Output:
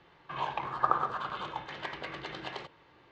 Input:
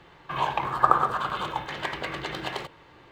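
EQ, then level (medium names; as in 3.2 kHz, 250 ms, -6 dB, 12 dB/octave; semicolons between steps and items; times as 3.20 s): low-pass 6.2 kHz 24 dB/octave; bass shelf 77 Hz -6 dB; -7.5 dB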